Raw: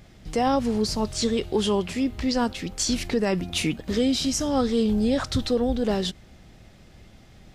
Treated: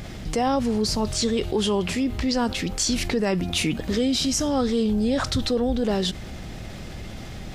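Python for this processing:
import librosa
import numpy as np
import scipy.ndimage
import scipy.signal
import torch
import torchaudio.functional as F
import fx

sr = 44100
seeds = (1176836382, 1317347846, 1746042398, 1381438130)

y = fx.env_flatten(x, sr, amount_pct=50)
y = y * 10.0 ** (-1.0 / 20.0)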